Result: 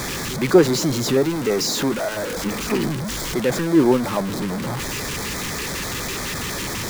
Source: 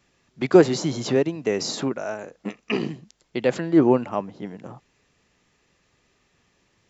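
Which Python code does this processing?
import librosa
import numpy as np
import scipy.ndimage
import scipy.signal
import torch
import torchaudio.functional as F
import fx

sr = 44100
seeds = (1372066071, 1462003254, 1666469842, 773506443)

y = x + 0.5 * 10.0 ** (-20.5 / 20.0) * np.sign(x)
y = fx.filter_lfo_notch(y, sr, shape='square', hz=6.0, low_hz=680.0, high_hz=2800.0, q=2.0)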